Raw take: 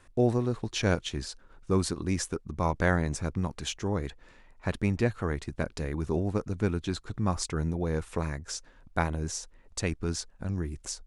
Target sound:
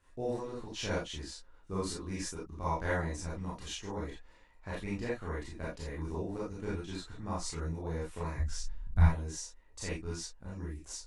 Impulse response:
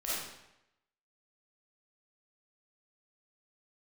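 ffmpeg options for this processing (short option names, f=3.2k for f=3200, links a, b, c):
-filter_complex "[0:a]asplit=3[a][b][c];[a]afade=t=out:st=8.36:d=0.02[d];[b]asubboost=boost=12:cutoff=120,afade=t=in:st=8.36:d=0.02,afade=t=out:st=9.05:d=0.02[e];[c]afade=t=in:st=9.05:d=0.02[f];[d][e][f]amix=inputs=3:normalize=0[g];[1:a]atrim=start_sample=2205,atrim=end_sample=6174,asetrate=66150,aresample=44100[h];[g][h]afir=irnorm=-1:irlink=0,volume=-6.5dB"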